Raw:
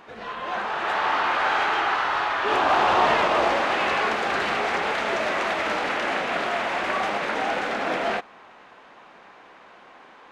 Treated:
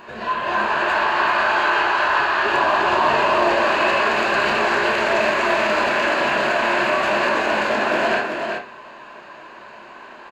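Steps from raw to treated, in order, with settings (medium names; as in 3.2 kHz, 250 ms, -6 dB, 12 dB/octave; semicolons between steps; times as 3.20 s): peak limiter -19 dBFS, peak gain reduction 9 dB; rippled EQ curve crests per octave 1.4, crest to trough 8 dB; delay 381 ms -5.5 dB; on a send at -3 dB: reverberation RT60 0.40 s, pre-delay 15 ms; on the sum: trim +5 dB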